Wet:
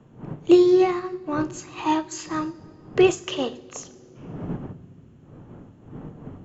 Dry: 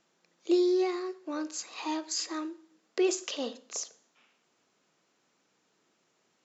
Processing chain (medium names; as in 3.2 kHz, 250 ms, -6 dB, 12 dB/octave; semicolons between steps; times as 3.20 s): wind noise 240 Hz -45 dBFS; reverberation RT60 3.5 s, pre-delay 3 ms, DRR 13.5 dB; upward expansion 1.5:1, over -37 dBFS; trim +8 dB